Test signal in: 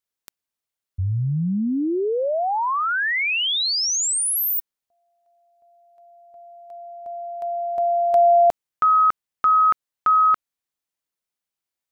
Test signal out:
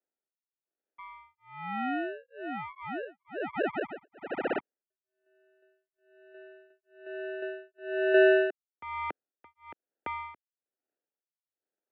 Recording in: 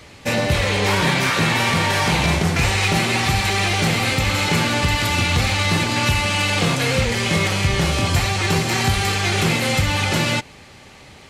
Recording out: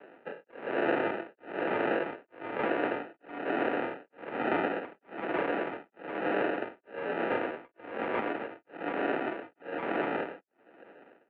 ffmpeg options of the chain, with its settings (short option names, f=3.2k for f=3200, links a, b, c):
-af "tremolo=f=1.1:d=1,acrusher=samples=39:mix=1:aa=0.000001,highpass=f=380:t=q:w=0.5412,highpass=f=380:t=q:w=1.307,lowpass=f=2.6k:t=q:w=0.5176,lowpass=f=2.6k:t=q:w=0.7071,lowpass=f=2.6k:t=q:w=1.932,afreqshift=-58,volume=-3.5dB"